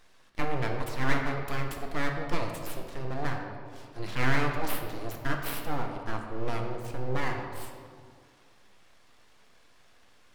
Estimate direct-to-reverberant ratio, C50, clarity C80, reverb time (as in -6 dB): 2.0 dB, 4.5 dB, 5.5 dB, 2.2 s